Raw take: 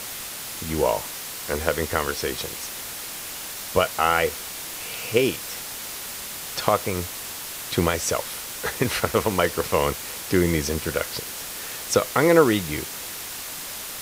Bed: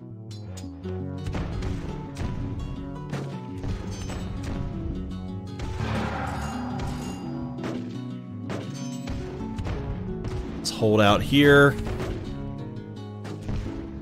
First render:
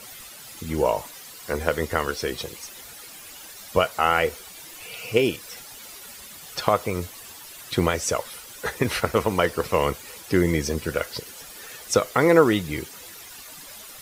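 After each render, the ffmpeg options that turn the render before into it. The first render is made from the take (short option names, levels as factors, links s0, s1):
-af "afftdn=nr=12:nf=-35"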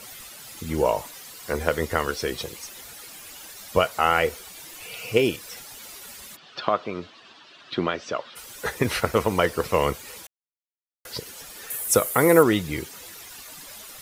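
-filter_complex "[0:a]asplit=3[s0][s1][s2];[s0]afade=t=out:st=6.35:d=0.02[s3];[s1]highpass=220,equalizer=f=480:t=q:w=4:g=-7,equalizer=f=860:t=q:w=4:g=-5,equalizer=f=2100:t=q:w=4:g=-7,lowpass=f=4000:w=0.5412,lowpass=f=4000:w=1.3066,afade=t=in:st=6.35:d=0.02,afade=t=out:st=8.35:d=0.02[s4];[s2]afade=t=in:st=8.35:d=0.02[s5];[s3][s4][s5]amix=inputs=3:normalize=0,asettb=1/sr,asplit=3[s6][s7][s8];[s6]atrim=end=11.704[s9];[s7]atrim=start=11.7:end=12.43,asetpts=PTS-STARTPTS,afade=t=in:d=0.004:c=qsin,afade=t=out:st=0.726:d=0.004:c=qsin,highshelf=f=7600:t=q:w=1.5:g=12.5[s10];[s8]atrim=start=12.426[s11];[s9][s10]acrossfade=d=0.004:c1=hsin:c2=qsin[s12];[s12][s11]acrossfade=d=0.004:c1=qsin:c2=hsin,asplit=3[s13][s14][s15];[s13]atrim=end=10.27,asetpts=PTS-STARTPTS,afade=t=out:st=10.266:d=0.004:c=hsin[s16];[s14]atrim=start=10.27:end=11.05,asetpts=PTS-STARTPTS,volume=0[s17];[s15]atrim=start=11.05,asetpts=PTS-STARTPTS,afade=t=in:d=0.004:c=hsin[s18];[s16][s17][s18]concat=n=3:v=0:a=1"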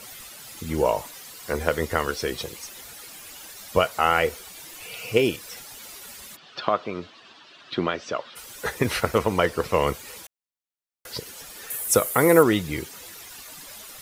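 -filter_complex "[0:a]asettb=1/sr,asplit=3[s0][s1][s2];[s0]atrim=end=9.184[s3];[s1]atrim=start=9.18:end=9.87,asetpts=PTS-STARTPTS,afade=t=in:d=0.004:c=qsin,afade=t=out:st=0.686:d=0.004:c=qsin,highshelf=f=8300:g=-5.5[s4];[s2]atrim=start=9.866[s5];[s3][s4]acrossfade=d=0.004:c1=hsin:c2=qsin[s6];[s6][s5]acrossfade=d=0.004:c1=qsin:c2=hsin"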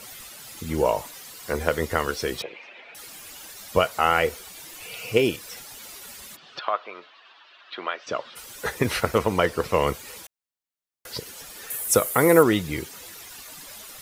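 -filter_complex "[0:a]asettb=1/sr,asplit=3[s0][s1][s2];[s0]atrim=end=2.424[s3];[s1]atrim=start=2.42:end=2.95,asetpts=PTS-STARTPTS,afade=t=in:d=0.004:c=qsin,afade=t=out:st=0.526:d=0.004:c=qsin,highpass=360,equalizer=f=630:t=q:w=4:g=6,equalizer=f=1200:t=q:w=4:g=-4,equalizer=f=2400:t=q:w=4:g=10,lowpass=f=3000:w=0.5412,lowpass=f=3000:w=1.3066[s4];[s2]atrim=start=2.946[s5];[s3][s4]acrossfade=d=0.004:c1=hsin:c2=qsin[s6];[s6][s5]acrossfade=d=0.004:c1=qsin:c2=hsin,asettb=1/sr,asplit=3[s7][s8][s9];[s7]atrim=end=6.594[s10];[s8]atrim=start=6.59:end=8.07,asetpts=PTS-STARTPTS,afade=t=in:d=0.004:c=qsin,afade=t=out:st=1.476:d=0.004:c=qsin,highpass=740,lowpass=3300[s11];[s9]atrim=start=8.066[s12];[s10][s11]acrossfade=d=0.004:c1=hsin:c2=qsin[s13];[s13][s12]acrossfade=d=0.004:c1=qsin:c2=hsin"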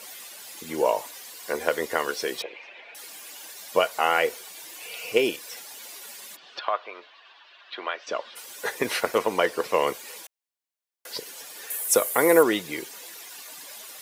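-af "highpass=340,bandreject=f=1300:w=11"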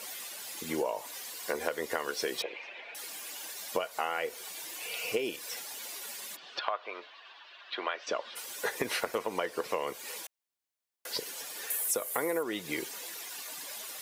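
-af "acompressor=threshold=0.0398:ratio=10"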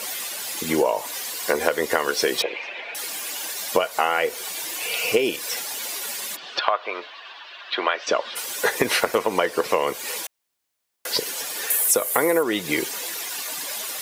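-af "volume=3.76"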